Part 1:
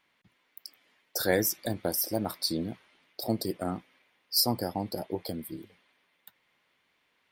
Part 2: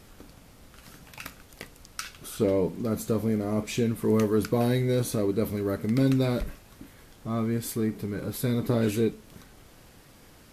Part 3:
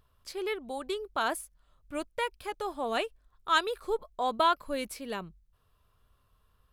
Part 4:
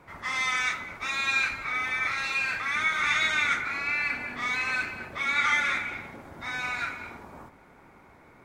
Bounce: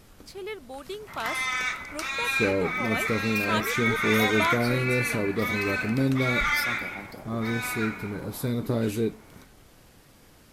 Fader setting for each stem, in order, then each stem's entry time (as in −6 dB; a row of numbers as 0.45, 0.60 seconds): −10.0, −1.5, −3.0, −1.0 decibels; 2.20, 0.00, 0.00, 1.00 seconds